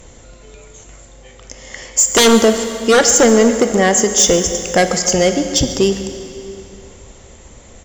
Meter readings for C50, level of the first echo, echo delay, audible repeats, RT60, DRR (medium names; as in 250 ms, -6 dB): 7.5 dB, -16.5 dB, 139 ms, 1, 2.7 s, 6.5 dB